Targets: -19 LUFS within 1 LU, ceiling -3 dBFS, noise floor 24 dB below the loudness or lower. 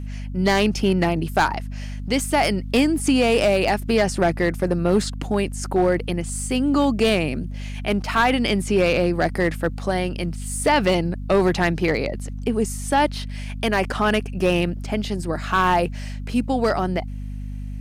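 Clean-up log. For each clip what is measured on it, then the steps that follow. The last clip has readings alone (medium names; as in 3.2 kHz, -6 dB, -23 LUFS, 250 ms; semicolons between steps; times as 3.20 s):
clipped samples 0.7%; clipping level -11.0 dBFS; hum 50 Hz; highest harmonic 250 Hz; hum level -28 dBFS; loudness -21.5 LUFS; peak level -11.0 dBFS; loudness target -19.0 LUFS
-> clip repair -11 dBFS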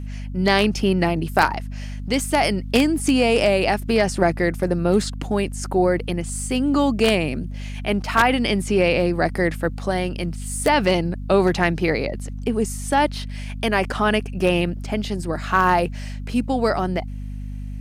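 clipped samples 0.0%; hum 50 Hz; highest harmonic 250 Hz; hum level -28 dBFS
-> de-hum 50 Hz, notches 5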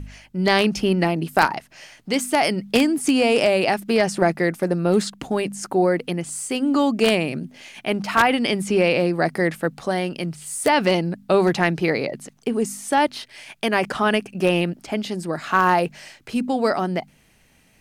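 hum not found; loudness -21.0 LUFS; peak level -2.0 dBFS; loudness target -19.0 LUFS
-> trim +2 dB; peak limiter -3 dBFS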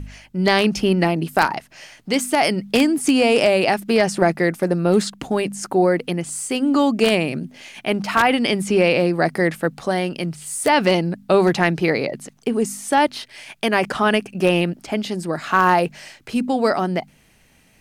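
loudness -19.5 LUFS; peak level -3.0 dBFS; noise floor -55 dBFS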